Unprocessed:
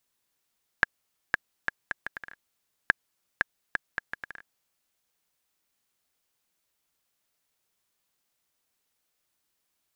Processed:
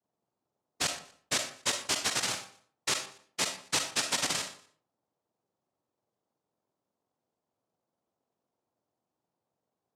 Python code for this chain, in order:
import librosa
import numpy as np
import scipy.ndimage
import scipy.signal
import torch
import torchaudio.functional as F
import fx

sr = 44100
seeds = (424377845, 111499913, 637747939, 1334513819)

p1 = fx.octave_mirror(x, sr, pivot_hz=1500.0)
p2 = scipy.signal.sosfilt(scipy.signal.butter(4, 350.0, 'highpass', fs=sr, output='sos'), p1)
p3 = fx.high_shelf(p2, sr, hz=2100.0, db=-7.5)
p4 = fx.over_compress(p3, sr, threshold_db=-37.0, ratio=-1.0)
p5 = fx.leveller(p4, sr, passes=5)
p6 = fx.noise_vocoder(p5, sr, seeds[0], bands=2)
p7 = p6 + fx.echo_feedback(p6, sr, ms=120, feedback_pct=26, wet_db=-18, dry=0)
p8 = fx.rev_freeverb(p7, sr, rt60_s=0.47, hf_ratio=0.65, predelay_ms=25, drr_db=11.0)
y = fx.sustainer(p8, sr, db_per_s=130.0)